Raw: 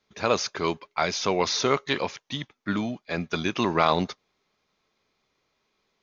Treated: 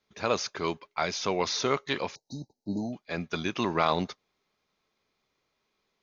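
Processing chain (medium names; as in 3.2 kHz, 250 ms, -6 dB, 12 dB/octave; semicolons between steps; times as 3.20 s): 2.15–2.93 s: brick-wall FIR band-stop 930–3800 Hz; trim -4 dB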